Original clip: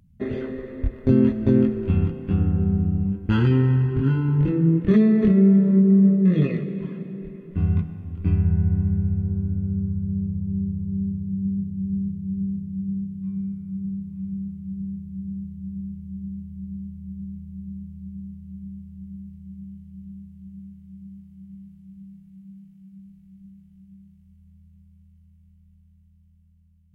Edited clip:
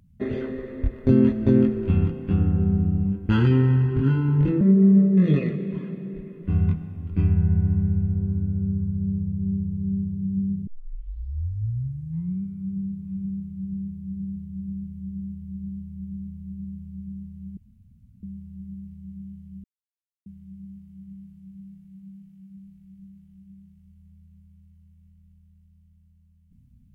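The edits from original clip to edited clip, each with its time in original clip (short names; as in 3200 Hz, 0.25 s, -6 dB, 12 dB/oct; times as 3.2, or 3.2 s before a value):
4.61–5.69 cut
11.75 tape start 1.75 s
18.65 insert room tone 0.66 s
20.06–20.68 mute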